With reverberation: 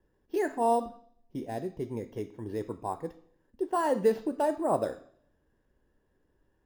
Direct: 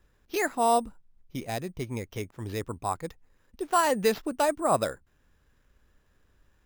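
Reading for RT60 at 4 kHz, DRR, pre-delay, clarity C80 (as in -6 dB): 0.60 s, 9.5 dB, 3 ms, 18.5 dB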